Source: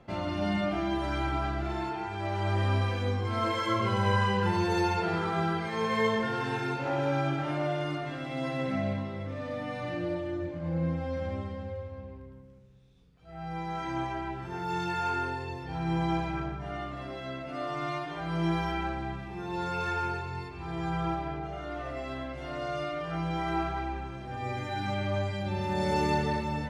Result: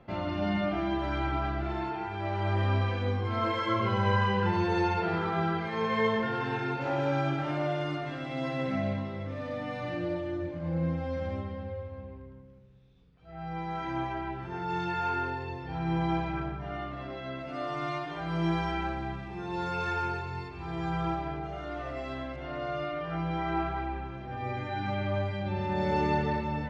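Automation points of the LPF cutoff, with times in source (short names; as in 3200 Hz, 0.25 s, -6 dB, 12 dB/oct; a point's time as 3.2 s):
3800 Hz
from 6.81 s 6300 Hz
from 11.41 s 4000 Hz
from 17.39 s 6500 Hz
from 22.36 s 3300 Hz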